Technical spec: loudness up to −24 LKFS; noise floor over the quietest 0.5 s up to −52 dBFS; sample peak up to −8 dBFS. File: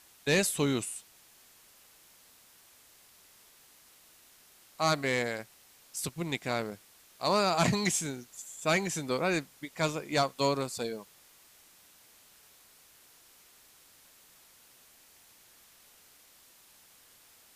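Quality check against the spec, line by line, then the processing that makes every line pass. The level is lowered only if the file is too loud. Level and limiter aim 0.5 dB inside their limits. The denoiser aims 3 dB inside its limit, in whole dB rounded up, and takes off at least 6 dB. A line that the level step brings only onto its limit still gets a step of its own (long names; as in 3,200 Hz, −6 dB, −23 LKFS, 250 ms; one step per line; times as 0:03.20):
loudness −31.0 LKFS: in spec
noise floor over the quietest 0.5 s −60 dBFS: in spec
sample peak −15.0 dBFS: in spec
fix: no processing needed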